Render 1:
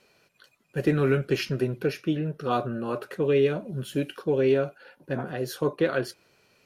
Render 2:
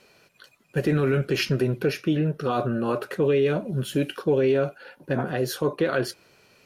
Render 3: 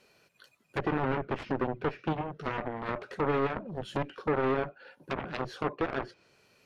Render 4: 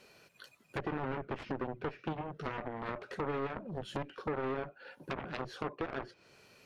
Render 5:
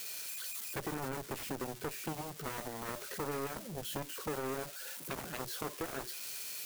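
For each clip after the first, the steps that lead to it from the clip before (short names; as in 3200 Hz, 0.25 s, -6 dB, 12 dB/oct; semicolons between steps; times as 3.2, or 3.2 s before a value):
limiter -19.5 dBFS, peak gain reduction 8 dB; gain +5.5 dB
added harmonics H 3 -7 dB, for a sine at -13.5 dBFS; soft clip -22.5 dBFS, distortion -8 dB; treble ducked by the level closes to 1900 Hz, closed at -31 dBFS; gain +2.5 dB
compressor 2:1, threshold -45 dBFS, peak gain reduction 12 dB; gain +3.5 dB
switching spikes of -31 dBFS; gain -2.5 dB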